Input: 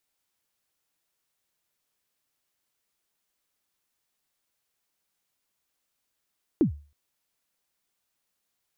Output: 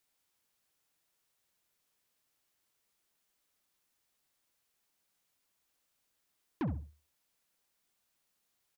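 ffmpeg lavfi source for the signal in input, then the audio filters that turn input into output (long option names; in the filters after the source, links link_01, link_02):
-f lavfi -i "aevalsrc='0.2*pow(10,-3*t/0.36)*sin(2*PI*(370*0.107/log(73/370)*(exp(log(73/370)*min(t,0.107)/0.107)-1)+73*max(t-0.107,0)))':duration=0.32:sample_rate=44100"
-filter_complex "[0:a]asoftclip=type=tanh:threshold=-31dB,asplit=2[link_01][link_02];[link_02]adelay=66,lowpass=frequency=1300:poles=1,volume=-9dB,asplit=2[link_03][link_04];[link_04]adelay=66,lowpass=frequency=1300:poles=1,volume=0.24,asplit=2[link_05][link_06];[link_06]adelay=66,lowpass=frequency=1300:poles=1,volume=0.24[link_07];[link_03][link_05][link_07]amix=inputs=3:normalize=0[link_08];[link_01][link_08]amix=inputs=2:normalize=0"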